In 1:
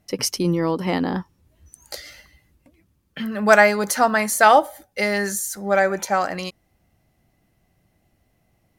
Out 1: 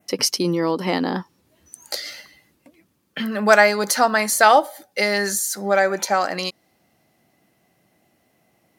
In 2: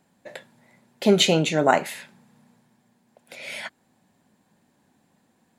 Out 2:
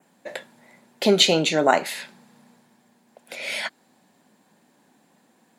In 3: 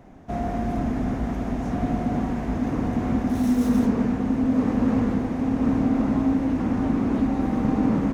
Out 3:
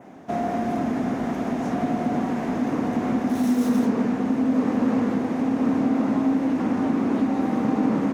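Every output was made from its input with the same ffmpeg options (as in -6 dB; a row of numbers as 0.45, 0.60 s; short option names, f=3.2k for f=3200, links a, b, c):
-filter_complex "[0:a]highpass=210,adynamicequalizer=threshold=0.00562:dfrequency=4400:dqfactor=2.3:tfrequency=4400:tqfactor=2.3:attack=5:release=100:ratio=0.375:range=3:mode=boostabove:tftype=bell,asplit=2[a][b];[b]acompressor=threshold=-29dB:ratio=6,volume=2dB[c];[a][c]amix=inputs=2:normalize=0,volume=-1.5dB"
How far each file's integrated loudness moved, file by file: 0.0, +0.5, +0.5 LU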